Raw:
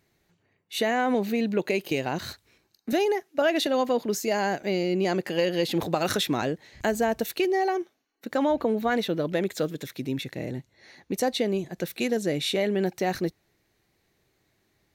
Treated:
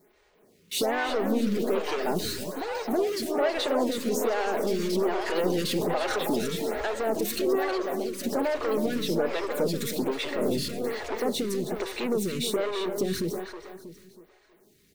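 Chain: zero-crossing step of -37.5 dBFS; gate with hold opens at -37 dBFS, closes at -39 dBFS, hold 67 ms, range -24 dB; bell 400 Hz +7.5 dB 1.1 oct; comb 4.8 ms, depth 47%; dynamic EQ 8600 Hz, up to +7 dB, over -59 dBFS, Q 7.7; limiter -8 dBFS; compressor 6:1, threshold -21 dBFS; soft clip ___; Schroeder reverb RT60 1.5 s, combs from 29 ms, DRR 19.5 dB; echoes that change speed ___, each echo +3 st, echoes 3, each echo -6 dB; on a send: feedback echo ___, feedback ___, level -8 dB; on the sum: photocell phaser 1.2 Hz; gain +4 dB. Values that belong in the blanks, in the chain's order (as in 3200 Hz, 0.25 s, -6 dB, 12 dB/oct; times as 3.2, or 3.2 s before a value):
-25.5 dBFS, 0.144 s, 0.32 s, 38%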